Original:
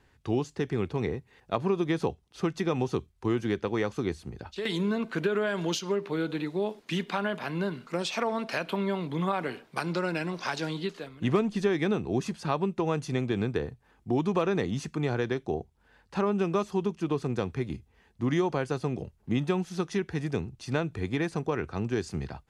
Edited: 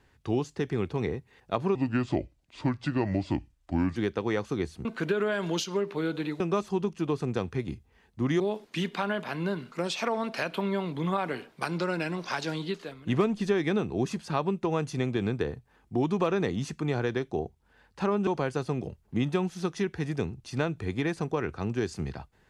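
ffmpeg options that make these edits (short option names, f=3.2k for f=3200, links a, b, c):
-filter_complex "[0:a]asplit=7[a][b][c][d][e][f][g];[a]atrim=end=1.754[h];[b]atrim=start=1.75:end=3.43,asetpts=PTS-STARTPTS,asetrate=33516,aresample=44100,atrim=end_sample=97484,asetpts=PTS-STARTPTS[i];[c]atrim=start=3.426:end=4.322[j];[d]atrim=start=4.998:end=6.552[k];[e]atrim=start=16.418:end=18.422[l];[f]atrim=start=6.548:end=16.422[m];[g]atrim=start=18.418[n];[h][i]acrossfade=d=0.004:c1=hsin:c2=hsin[o];[o][j]acrossfade=d=0.004:c1=hsin:c2=hsin[p];[p][k]acrossfade=d=0.004:c1=hsin:c2=hsin[q];[q][l]acrossfade=d=0.004:c1=hsin:c2=hsin[r];[r][m]acrossfade=d=0.004:c1=hsin:c2=hsin[s];[s][n]acrossfade=d=0.004:c1=hsin:c2=hsin"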